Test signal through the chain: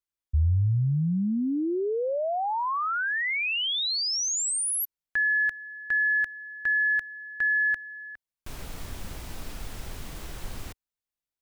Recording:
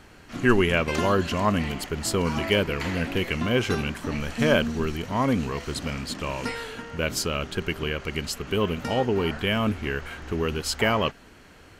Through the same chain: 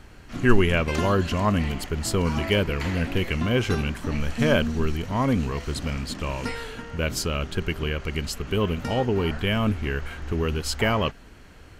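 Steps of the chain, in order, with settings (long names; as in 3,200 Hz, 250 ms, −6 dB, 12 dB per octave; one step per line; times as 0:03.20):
low-shelf EQ 95 Hz +11.5 dB
level −1 dB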